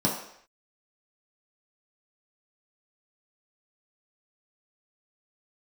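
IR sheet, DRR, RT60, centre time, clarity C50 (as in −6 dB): −4.5 dB, non-exponential decay, 36 ms, 5.0 dB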